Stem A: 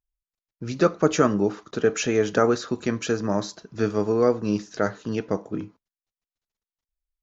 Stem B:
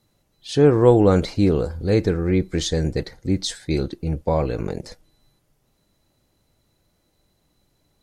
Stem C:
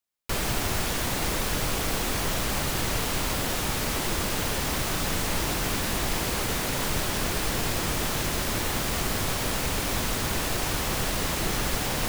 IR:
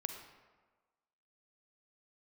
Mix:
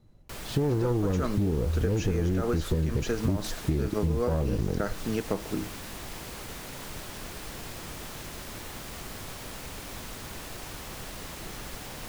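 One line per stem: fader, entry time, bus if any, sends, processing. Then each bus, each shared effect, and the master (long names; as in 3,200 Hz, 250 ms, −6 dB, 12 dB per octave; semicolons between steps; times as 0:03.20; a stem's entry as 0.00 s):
−1.5 dB, 0.00 s, bus A, no send, no processing
−1.0 dB, 0.00 s, bus A, no send, phase distortion by the signal itself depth 0.39 ms; spectral tilt −3 dB per octave
−12.5 dB, 0.00 s, no bus, no send, no processing
bus A: 0.0 dB, brickwall limiter −10 dBFS, peak gain reduction 10.5 dB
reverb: not used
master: downward compressor, threshold −23 dBFS, peak gain reduction 9.5 dB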